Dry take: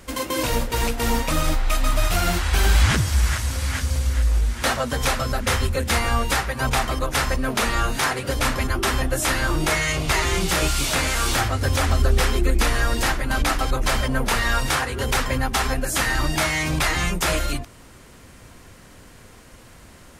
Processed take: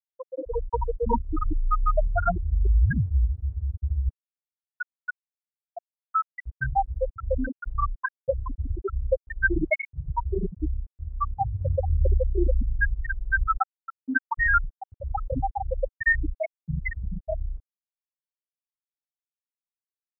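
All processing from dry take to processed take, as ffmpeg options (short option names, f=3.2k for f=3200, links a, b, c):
-filter_complex "[0:a]asettb=1/sr,asplit=3[a][b][c];[a]atrim=end=4.094[d];[b]atrim=start=4.09:end=6.46,asetpts=PTS-STARTPTS,afade=t=in:d=0.004:c=qsin,afade=t=out:st=2.366:d=0.004:c=qsin,highpass=670,afreqshift=140[e];[c]atrim=start=6.456[f];[d][e]acrossfade=d=0.004:c1=hsin:c2=qsin[g];[g][f]acrossfade=d=0.004:c1=qsin:c2=hsin,asettb=1/sr,asplit=3[h][i][j];[h]atrim=end=13.574[k];[i]atrim=start=13.57:end=14.38,asetpts=PTS-STARTPTS,afade=t=in:d=0.004:c=qsin,afade=t=out:st=0.806:d=0.004:c=qsin,highpass=160,highshelf=f=8.4k:g=12,bandreject=f=60:t=h:w=6,bandreject=f=120:t=h:w=6,bandreject=f=180:t=h:w=6,bandreject=f=240:t=h:w=6,bandreject=f=300:t=h:w=6,bandreject=f=360:t=h:w=6,bandreject=f=420:t=h:w=6,bandreject=f=480:t=h:w=6,bandreject=f=540:t=h:w=6[l];[j]atrim=start=14.376[m];[k][l]acrossfade=d=0.004:c1=hsin:c2=qsin[n];[n][m]acrossfade=d=0.004:c1=qsin:c2=hsin,afftfilt=real='re*gte(hypot(re,im),0.501)':imag='im*gte(hypot(re,im),0.501)':win_size=1024:overlap=0.75,bass=f=250:g=-11,treble=f=4k:g=-10,dynaudnorm=f=210:g=5:m=11dB,volume=-3dB"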